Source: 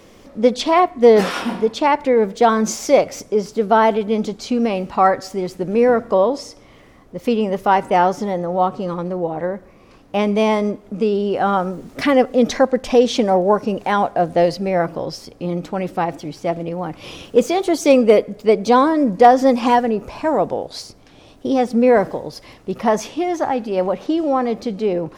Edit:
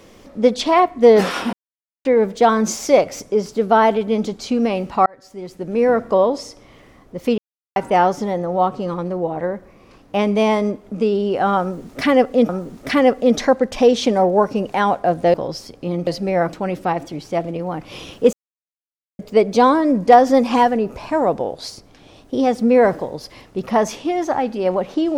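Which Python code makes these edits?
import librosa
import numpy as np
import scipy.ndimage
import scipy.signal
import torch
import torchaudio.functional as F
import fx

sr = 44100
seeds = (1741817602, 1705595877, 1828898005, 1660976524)

y = fx.edit(x, sr, fx.silence(start_s=1.53, length_s=0.52),
    fx.fade_in_span(start_s=5.06, length_s=0.96),
    fx.silence(start_s=7.38, length_s=0.38),
    fx.repeat(start_s=11.61, length_s=0.88, count=2),
    fx.move(start_s=14.46, length_s=0.46, to_s=15.65),
    fx.silence(start_s=17.45, length_s=0.86), tone=tone)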